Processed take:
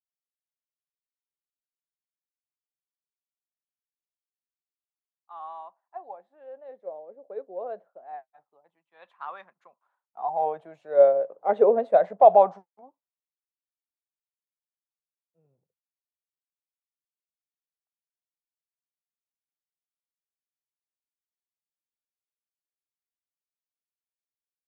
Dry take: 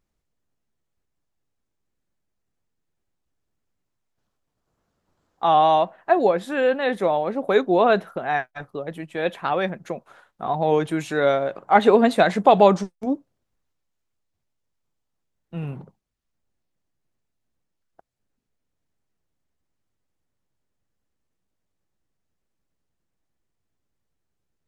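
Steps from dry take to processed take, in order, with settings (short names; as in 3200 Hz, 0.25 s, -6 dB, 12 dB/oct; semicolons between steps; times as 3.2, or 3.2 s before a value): Doppler pass-by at 11.14, 9 m/s, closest 13 m; dynamic EQ 310 Hz, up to -7 dB, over -36 dBFS, Q 2.2; wah 0.24 Hz 510–1100 Hz, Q 4.2; three-band expander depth 70%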